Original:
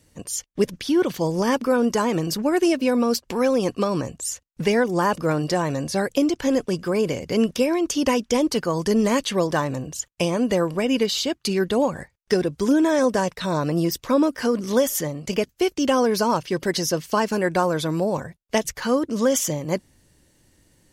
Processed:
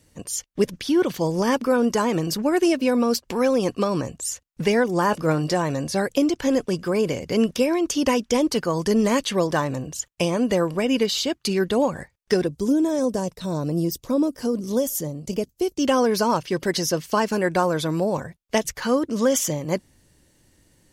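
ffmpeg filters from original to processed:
-filter_complex "[0:a]asettb=1/sr,asplit=3[a][b][c];[a]atrim=end=5.064[d];[b]atrim=start=5.06:end=5.53,asetpts=PTS-STARTPTS,afade=t=in:d=0.004:c=qsin,afade=t=out:st=0.466:d=0.004:c=qsin,asplit=2[e][f];[f]adelay=19,volume=-11.5dB[g];[e][g]amix=inputs=2:normalize=0,atrim=end_sample=20727[h];[c]atrim=start=5.526[i];[d][h]acrossfade=d=0.004:c1=hsin:c2=qsin[j];[j][i]acrossfade=d=0.004:c1=qsin:c2=hsin,asettb=1/sr,asplit=3[k][l][m];[k]atrim=end=12.474[n];[l]atrim=start=12.47:end=15.79,asetpts=PTS-STARTPTS,afade=t=in:d=0.004:c=qsin,afade=t=out:st=3.316:d=0.004:c=qsin,equalizer=f=1.8k:w=0.59:g=-14.5[o];[m]atrim=start=15.786[p];[n][o]acrossfade=d=0.004:c1=hsin:c2=qsin[q];[q][p]acrossfade=d=0.004:c1=qsin:c2=hsin"

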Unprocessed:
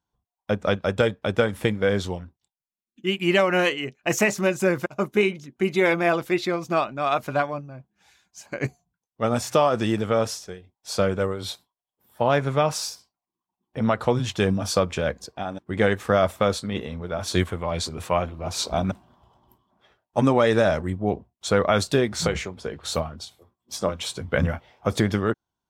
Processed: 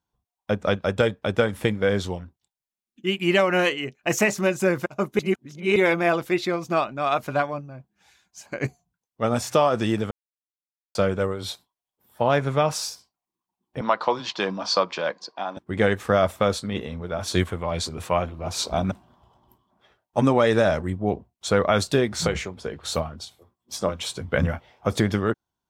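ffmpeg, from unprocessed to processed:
-filter_complex "[0:a]asettb=1/sr,asplit=3[a][b][c];[a]atrim=end=13.814[d];[b]atrim=start=13.81:end=15.57,asetpts=PTS-STARTPTS,afade=t=in:d=0.004:c=qsin,afade=t=out:st=1.756:d=0.004:c=qsin,highpass=f=220:w=0.5412,highpass=f=220:w=1.3066,equalizer=f=240:t=q:w=4:g=-9,equalizer=f=420:t=q:w=4:g=-6,equalizer=f=1k:t=q:w=4:g=9,equalizer=f=4.5k:t=q:w=4:g=8,lowpass=f=5.8k:w=0.5412,lowpass=f=5.8k:w=1.3066[e];[c]atrim=start=15.566[f];[d][e]acrossfade=d=0.004:c1=hsin:c2=qsin[g];[g][f]acrossfade=d=0.004:c1=qsin:c2=hsin,asplit=5[h][i][j][k][l];[h]atrim=end=5.192[m];[i]atrim=start=5.188:end=5.762,asetpts=PTS-STARTPTS,areverse[n];[j]atrim=start=5.758:end=10.11,asetpts=PTS-STARTPTS,afade=t=out:st=4.348:d=0.004:c=hsin[o];[k]atrim=start=10.11:end=10.95,asetpts=PTS-STARTPTS,volume=0[p];[l]atrim=start=10.95,asetpts=PTS-STARTPTS,afade=t=in:d=0.004:c=hsin[q];[m][n]acrossfade=d=0.004:c1=hsin:c2=hsin[r];[o][p][q]concat=n=3:v=0:a=1[s];[r][s]acrossfade=d=0.004:c1=hsin:c2=hsin"

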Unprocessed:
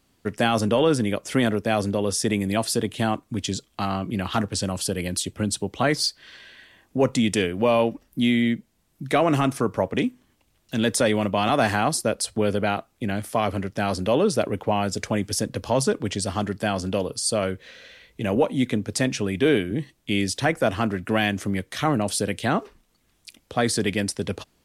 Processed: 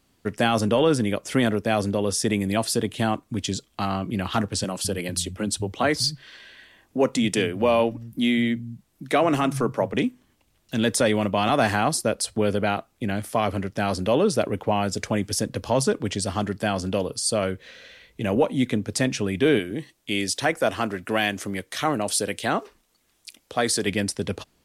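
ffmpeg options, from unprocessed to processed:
-filter_complex "[0:a]asettb=1/sr,asplit=3[a][b][c];[a]atrim=end=4.644[d];[b]atrim=start=4.64:end=9.94,asetpts=PTS-STARTPTS,afade=t=in:d=0.004:c=qsin,afade=t=out:st=5.296:d=0.004:c=qsin,acrossover=split=150[e][f];[e]adelay=200[g];[g][f]amix=inputs=2:normalize=0,atrim=end_sample=233730[h];[c]atrim=start=9.936[i];[d][h]acrossfade=d=0.004:c1=hsin:c2=qsin[j];[j][i]acrossfade=d=0.004:c1=qsin:c2=hsin,asettb=1/sr,asplit=3[k][l][m];[k]atrim=end=19.594[n];[l]atrim=start=19.59:end=23.87,asetpts=PTS-STARTPTS,afade=t=in:d=0.004:c=qsin,afade=t=out:st=4.276:d=0.004:c=qsin,bass=f=250:g=-8,treble=f=4k:g=3[o];[m]atrim=start=23.866[p];[n][o]acrossfade=d=0.004:c1=hsin:c2=qsin[q];[q][p]acrossfade=d=0.004:c1=qsin:c2=hsin"

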